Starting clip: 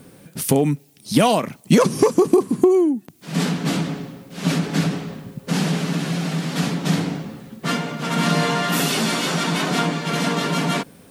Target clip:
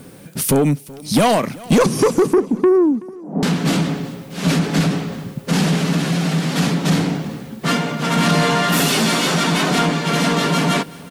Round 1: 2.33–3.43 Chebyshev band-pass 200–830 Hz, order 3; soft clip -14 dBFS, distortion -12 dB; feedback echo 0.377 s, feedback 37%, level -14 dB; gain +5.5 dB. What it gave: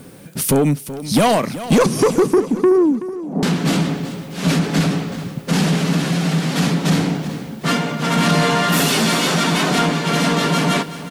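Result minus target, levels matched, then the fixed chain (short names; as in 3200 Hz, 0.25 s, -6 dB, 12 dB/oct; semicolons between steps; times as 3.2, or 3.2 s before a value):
echo-to-direct +7.5 dB
2.33–3.43 Chebyshev band-pass 200–830 Hz, order 3; soft clip -14 dBFS, distortion -12 dB; feedback echo 0.377 s, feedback 37%, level -21.5 dB; gain +5.5 dB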